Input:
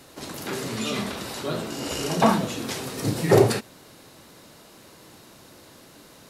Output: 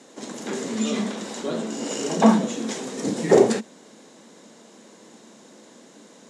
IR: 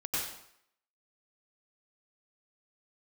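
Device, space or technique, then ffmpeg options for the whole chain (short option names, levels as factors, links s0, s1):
television speaker: -af "highpass=f=190:w=0.5412,highpass=f=190:w=1.3066,equalizer=f=220:t=q:w=4:g=9,equalizer=f=470:t=q:w=4:g=4,equalizer=f=1300:t=q:w=4:g=-5,equalizer=f=2600:t=q:w=4:g=-5,equalizer=f=4500:t=q:w=4:g=-6,equalizer=f=7000:t=q:w=4:g=6,lowpass=f=8200:w=0.5412,lowpass=f=8200:w=1.3066"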